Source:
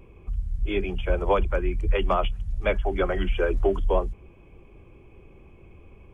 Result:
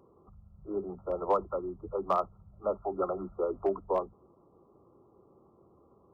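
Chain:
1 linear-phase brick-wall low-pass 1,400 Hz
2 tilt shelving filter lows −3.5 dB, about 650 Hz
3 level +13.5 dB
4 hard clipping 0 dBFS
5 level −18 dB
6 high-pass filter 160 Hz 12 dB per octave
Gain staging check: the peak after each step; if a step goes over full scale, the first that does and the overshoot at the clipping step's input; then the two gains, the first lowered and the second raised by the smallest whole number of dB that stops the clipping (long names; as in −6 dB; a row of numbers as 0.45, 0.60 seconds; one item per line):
−10.0, −10.0, +3.5, 0.0, −18.0, −16.0 dBFS
step 3, 3.5 dB
step 3 +9.5 dB, step 5 −14 dB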